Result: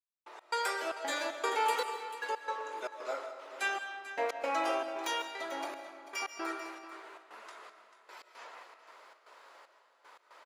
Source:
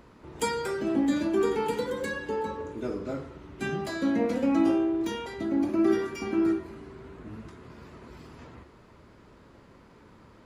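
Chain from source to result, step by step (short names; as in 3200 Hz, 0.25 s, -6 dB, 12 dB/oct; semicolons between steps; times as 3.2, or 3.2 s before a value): HPF 630 Hz 24 dB/oct; step gate "..x.xxx.xx.xxx." 115 bpm -60 dB; on a send: echo 0.441 s -13.5 dB; on the sum: digital reverb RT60 1.2 s, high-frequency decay 0.8×, pre-delay 0.1 s, DRR 9 dB; gain +4 dB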